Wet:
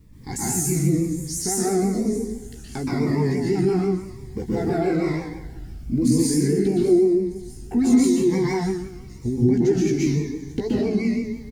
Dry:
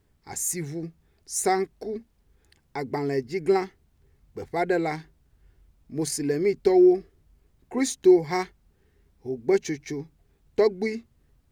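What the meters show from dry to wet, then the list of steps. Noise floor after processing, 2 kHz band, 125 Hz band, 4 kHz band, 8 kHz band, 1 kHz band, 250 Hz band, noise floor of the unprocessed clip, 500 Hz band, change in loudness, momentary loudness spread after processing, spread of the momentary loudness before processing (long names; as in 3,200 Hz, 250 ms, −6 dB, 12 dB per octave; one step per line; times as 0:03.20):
−39 dBFS, −0.5 dB, +14.0 dB, +4.0 dB, +5.0 dB, −2.0 dB, +7.5 dB, −66 dBFS, +1.0 dB, +3.5 dB, 14 LU, 18 LU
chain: downward compressor 3 to 1, threshold −39 dBFS, peak gain reduction 19.5 dB
on a send: delay with a high-pass on its return 620 ms, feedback 56%, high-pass 3,700 Hz, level −18.5 dB
on the sum: dense smooth reverb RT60 1.1 s, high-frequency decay 0.85×, pre-delay 110 ms, DRR −8 dB
in parallel at +2.5 dB: brickwall limiter −26.5 dBFS, peak gain reduction 11 dB
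on the sum: low shelf with overshoot 350 Hz +8 dB, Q 1.5
double-tracking delay 16 ms −5 dB
pitch vibrato 6 Hz 70 cents
phaser whose notches keep moving one way falling 0.98 Hz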